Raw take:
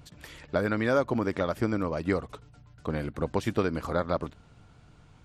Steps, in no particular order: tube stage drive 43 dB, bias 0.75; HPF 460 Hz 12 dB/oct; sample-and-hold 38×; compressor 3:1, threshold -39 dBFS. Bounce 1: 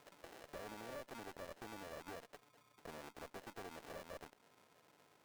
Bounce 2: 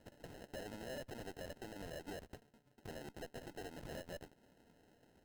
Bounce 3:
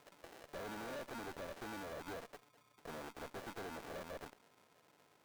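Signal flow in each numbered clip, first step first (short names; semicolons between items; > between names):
sample-and-hold > compressor > HPF > tube stage; HPF > compressor > sample-and-hold > tube stage; sample-and-hold > HPF > tube stage > compressor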